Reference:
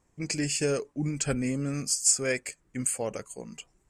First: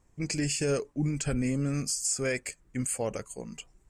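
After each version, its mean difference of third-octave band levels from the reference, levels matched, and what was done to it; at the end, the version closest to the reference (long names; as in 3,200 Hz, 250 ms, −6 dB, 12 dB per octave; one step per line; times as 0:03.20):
1.5 dB: low-shelf EQ 84 Hz +10 dB
brickwall limiter −20 dBFS, peak gain reduction 9.5 dB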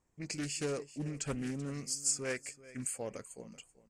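3.5 dB: repeating echo 384 ms, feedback 23%, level −18 dB
highs frequency-modulated by the lows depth 0.29 ms
level −8.5 dB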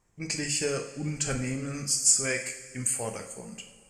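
5.5 dB: parametric band 350 Hz −5 dB 1.7 octaves
coupled-rooms reverb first 0.59 s, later 3 s, from −17 dB, DRR 3.5 dB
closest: first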